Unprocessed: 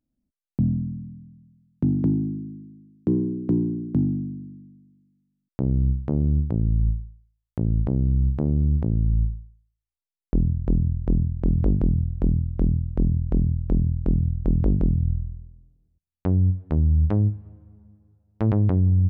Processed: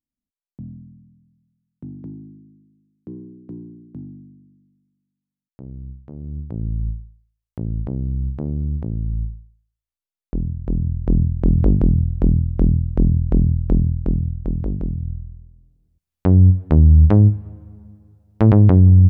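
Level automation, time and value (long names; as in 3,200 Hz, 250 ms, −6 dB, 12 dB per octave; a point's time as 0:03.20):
0:06.13 −13.5 dB
0:06.64 −2.5 dB
0:10.57 −2.5 dB
0:11.22 +5.5 dB
0:13.68 +5.5 dB
0:14.68 −3.5 dB
0:15.22 −3.5 dB
0:16.41 +9 dB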